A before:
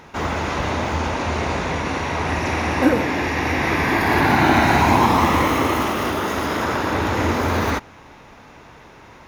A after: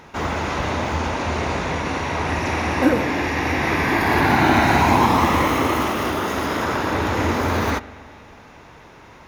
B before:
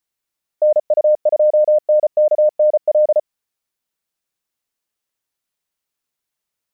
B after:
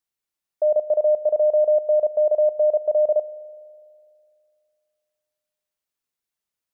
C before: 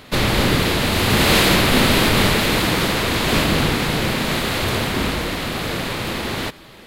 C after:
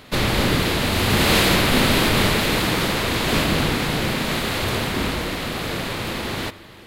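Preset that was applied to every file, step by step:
spring tank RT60 2.3 s, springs 41 ms, chirp 25 ms, DRR 17 dB; match loudness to -20 LUFS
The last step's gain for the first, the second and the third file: -0.5, -5.5, -2.5 dB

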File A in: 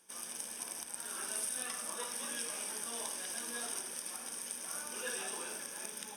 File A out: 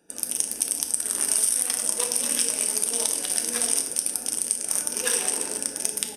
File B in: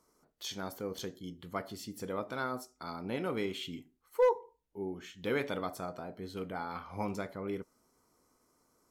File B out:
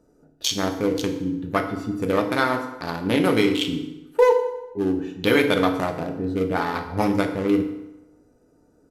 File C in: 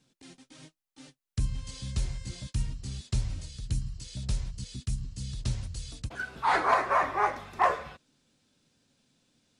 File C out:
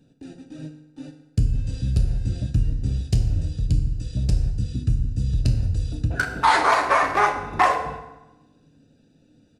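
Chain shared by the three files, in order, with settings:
Wiener smoothing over 41 samples; high shelf 2200 Hz +10.5 dB; compressor 5:1, threshold -31 dBFS; FDN reverb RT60 1 s, low-frequency decay 0.9×, high-frequency decay 0.75×, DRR 4 dB; downsampling 32000 Hz; match loudness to -23 LUFS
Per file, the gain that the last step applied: +12.5, +15.0, +14.0 dB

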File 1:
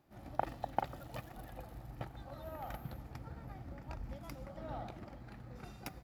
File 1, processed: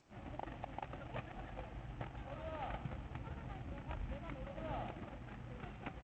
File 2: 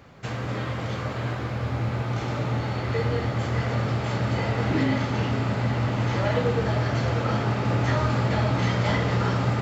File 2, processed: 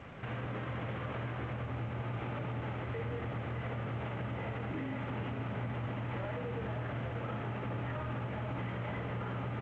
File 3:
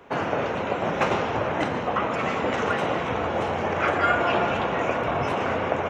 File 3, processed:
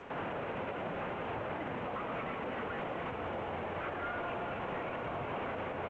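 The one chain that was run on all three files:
CVSD 16 kbps; compressor 3:1, threshold -36 dBFS; limiter -31 dBFS; on a send: feedback echo 0.122 s, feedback 36%, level -22 dB; on the sum: gain +1 dB; G.722 64 kbps 16000 Hz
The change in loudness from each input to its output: -2.0, -13.0, -13.5 LU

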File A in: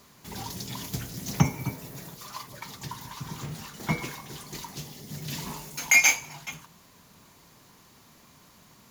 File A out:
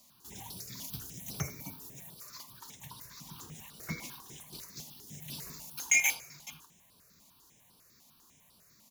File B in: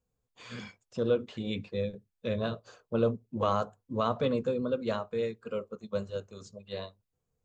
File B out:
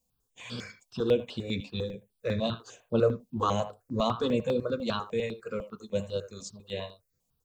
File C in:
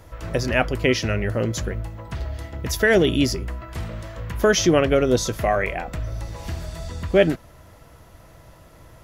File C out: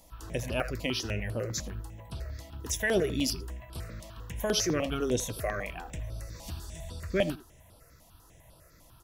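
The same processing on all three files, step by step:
high shelf 3500 Hz +10.5 dB; speakerphone echo 80 ms, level -13 dB; step phaser 10 Hz 400–6700 Hz; normalise peaks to -12 dBFS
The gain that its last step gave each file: -10.5, +4.0, -9.0 dB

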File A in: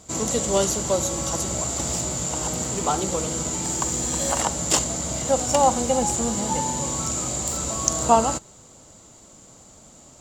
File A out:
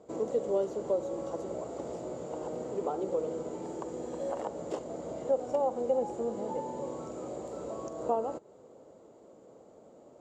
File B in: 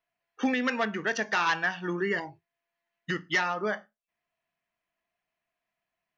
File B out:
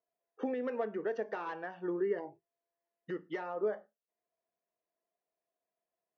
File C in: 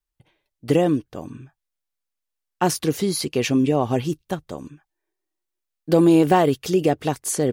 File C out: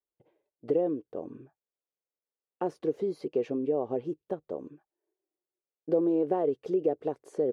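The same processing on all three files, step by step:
compressor 2:1, threshold -31 dBFS; band-pass 460 Hz, Q 2.5; gain +4.5 dB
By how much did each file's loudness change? -12.0, -8.5, -10.0 LU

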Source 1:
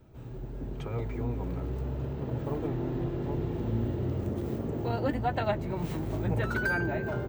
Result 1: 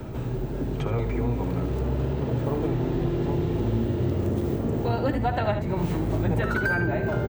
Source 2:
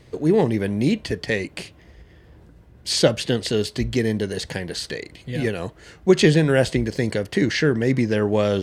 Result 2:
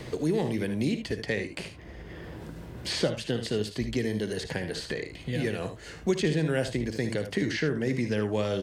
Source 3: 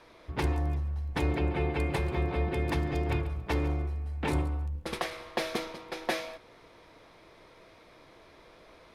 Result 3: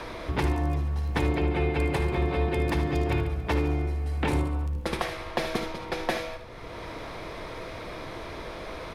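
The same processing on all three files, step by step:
early reflections 57 ms -12.5 dB, 75 ms -11 dB; three-band squash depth 70%; normalise peaks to -12 dBFS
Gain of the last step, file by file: +5.0, -8.5, +3.0 dB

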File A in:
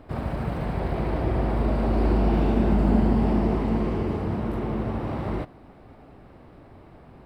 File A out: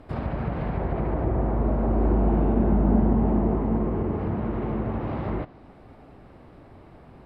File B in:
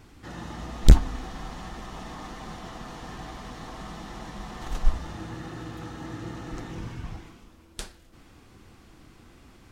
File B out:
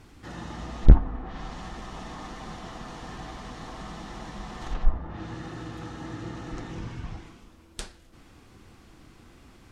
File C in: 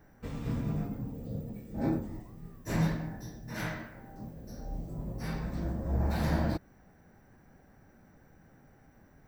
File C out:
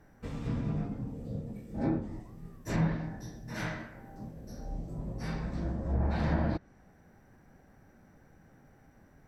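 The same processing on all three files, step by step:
treble ducked by the level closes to 1300 Hz, closed at -21 dBFS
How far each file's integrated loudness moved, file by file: 0.0, 0.0, 0.0 LU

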